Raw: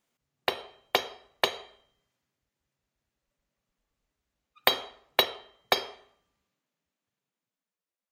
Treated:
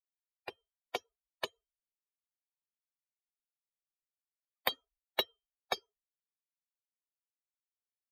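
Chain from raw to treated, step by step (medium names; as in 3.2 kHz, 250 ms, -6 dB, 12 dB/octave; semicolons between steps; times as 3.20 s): expander on every frequency bin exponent 3; trim -6 dB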